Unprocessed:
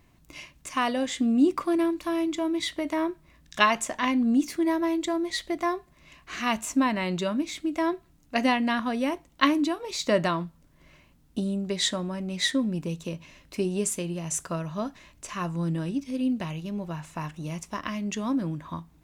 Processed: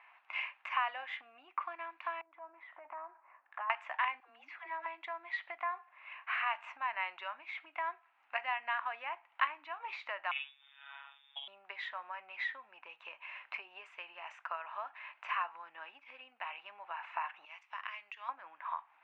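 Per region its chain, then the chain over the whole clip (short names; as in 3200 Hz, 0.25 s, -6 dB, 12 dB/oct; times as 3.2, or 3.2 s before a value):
2.21–3.7 compressor 10:1, threshold -38 dBFS + Butterworth band-pass 510 Hz, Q 0.55 + Doppler distortion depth 0.17 ms
4.2–4.86 compressor 2:1, threshold -27 dBFS + dispersion lows, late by 0.116 s, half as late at 460 Hz
5.62–6.53 air absorption 99 m + resonator 66 Hz, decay 0.35 s, mix 30%
10.31–11.48 doubler 48 ms -3 dB + inverted band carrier 3600 Hz + robotiser 139 Hz
17.45–18.29 pre-emphasis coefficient 0.9 + compressor 5:1, threshold -43 dBFS
whole clip: compressor 4:1, threshold -40 dBFS; elliptic band-pass 810–2600 Hz, stop band 80 dB; gain +9.5 dB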